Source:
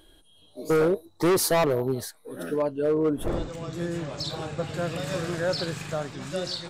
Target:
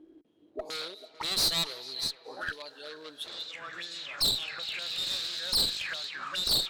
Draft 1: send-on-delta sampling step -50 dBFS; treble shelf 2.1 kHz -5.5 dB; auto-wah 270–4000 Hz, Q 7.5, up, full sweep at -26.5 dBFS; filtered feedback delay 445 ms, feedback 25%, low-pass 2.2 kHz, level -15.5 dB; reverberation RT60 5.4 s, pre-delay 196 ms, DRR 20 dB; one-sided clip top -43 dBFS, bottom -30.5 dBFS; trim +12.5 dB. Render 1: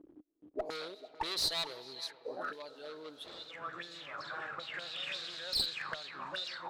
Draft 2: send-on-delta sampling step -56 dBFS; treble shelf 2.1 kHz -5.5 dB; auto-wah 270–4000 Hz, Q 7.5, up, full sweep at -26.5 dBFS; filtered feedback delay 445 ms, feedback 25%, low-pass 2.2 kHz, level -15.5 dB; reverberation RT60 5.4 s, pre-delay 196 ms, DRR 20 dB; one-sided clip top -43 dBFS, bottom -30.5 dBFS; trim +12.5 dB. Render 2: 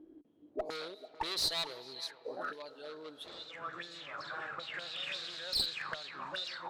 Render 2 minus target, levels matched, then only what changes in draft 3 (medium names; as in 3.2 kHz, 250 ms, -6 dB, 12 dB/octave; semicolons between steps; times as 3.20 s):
2 kHz band +4.0 dB
change: treble shelf 2.1 kHz +6.5 dB